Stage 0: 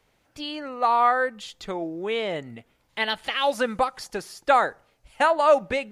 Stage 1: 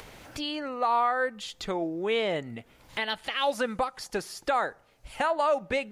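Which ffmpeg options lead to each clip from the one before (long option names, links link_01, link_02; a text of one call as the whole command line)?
ffmpeg -i in.wav -af "acompressor=mode=upward:threshold=-32dB:ratio=2.5,alimiter=limit=-16.5dB:level=0:latency=1:release=323" out.wav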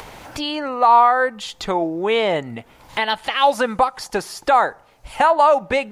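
ffmpeg -i in.wav -af "equalizer=frequency=900:width=1.8:gain=7,volume=7.5dB" out.wav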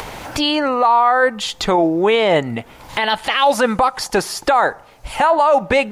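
ffmpeg -i in.wav -af "alimiter=limit=-13.5dB:level=0:latency=1:release=14,volume=7.5dB" out.wav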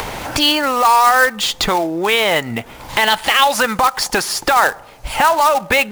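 ffmpeg -i in.wav -filter_complex "[0:a]acrossover=split=1000[link_01][link_02];[link_01]acompressor=threshold=-24dB:ratio=6[link_03];[link_02]acrusher=bits=2:mode=log:mix=0:aa=0.000001[link_04];[link_03][link_04]amix=inputs=2:normalize=0,volume=5dB" out.wav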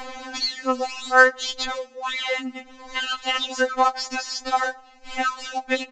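ffmpeg -i in.wav -af "aresample=16000,aresample=44100,afftfilt=real='re*3.46*eq(mod(b,12),0)':imag='im*3.46*eq(mod(b,12),0)':win_size=2048:overlap=0.75,volume=-7dB" out.wav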